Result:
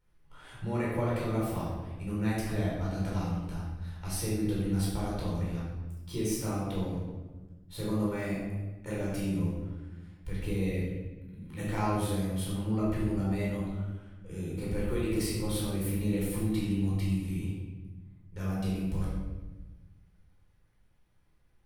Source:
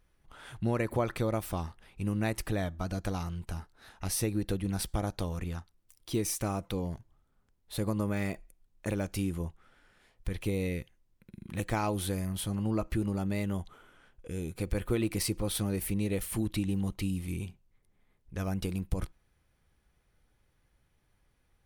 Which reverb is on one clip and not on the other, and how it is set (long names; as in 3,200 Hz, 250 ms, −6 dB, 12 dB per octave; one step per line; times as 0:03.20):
rectangular room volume 780 cubic metres, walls mixed, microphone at 4.5 metres
level −10.5 dB